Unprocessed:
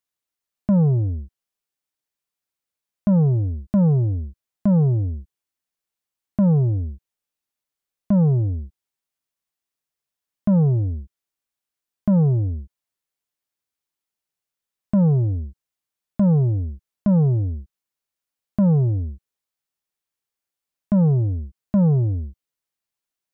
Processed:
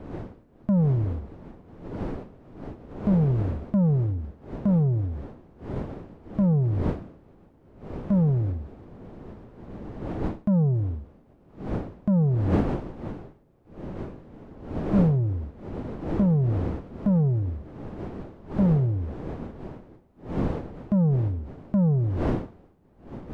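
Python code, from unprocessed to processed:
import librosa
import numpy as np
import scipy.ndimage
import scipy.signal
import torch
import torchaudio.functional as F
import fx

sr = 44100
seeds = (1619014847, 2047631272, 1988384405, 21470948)

y = fx.dmg_wind(x, sr, seeds[0], corner_hz=340.0, level_db=-30.0)
y = y + 10.0 ** (-23.5 / 20.0) * np.pad(y, (int(128 * sr / 1000.0), 0))[:len(y)]
y = F.gain(torch.from_numpy(y), -4.5).numpy()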